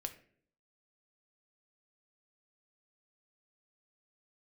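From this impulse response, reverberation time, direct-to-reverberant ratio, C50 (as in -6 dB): 0.55 s, 6.0 dB, 13.0 dB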